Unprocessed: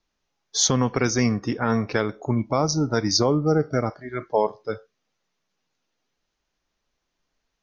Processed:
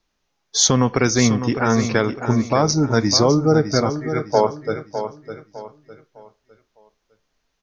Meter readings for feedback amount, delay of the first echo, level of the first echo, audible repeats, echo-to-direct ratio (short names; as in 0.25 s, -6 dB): 34%, 0.606 s, -9.5 dB, 3, -9.0 dB